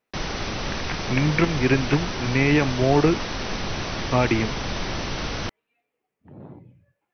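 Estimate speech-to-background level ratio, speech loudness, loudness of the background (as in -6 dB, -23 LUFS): 6.5 dB, -22.5 LUFS, -29.0 LUFS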